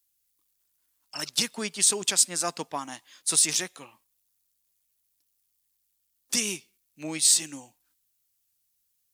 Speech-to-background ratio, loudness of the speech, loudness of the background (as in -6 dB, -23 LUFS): 16.5 dB, -24.0 LUFS, -40.5 LUFS